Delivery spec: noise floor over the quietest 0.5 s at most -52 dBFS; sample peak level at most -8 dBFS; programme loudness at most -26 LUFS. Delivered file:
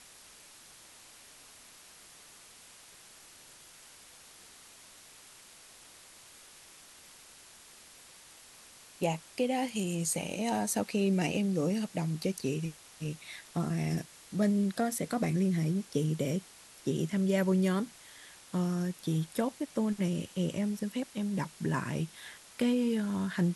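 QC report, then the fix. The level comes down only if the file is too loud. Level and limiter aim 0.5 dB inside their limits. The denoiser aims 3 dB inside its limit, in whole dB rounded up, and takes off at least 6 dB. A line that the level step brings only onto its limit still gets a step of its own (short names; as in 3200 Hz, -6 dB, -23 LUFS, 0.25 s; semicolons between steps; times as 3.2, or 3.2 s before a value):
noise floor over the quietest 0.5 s -55 dBFS: OK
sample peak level -16.5 dBFS: OK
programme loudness -32.0 LUFS: OK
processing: none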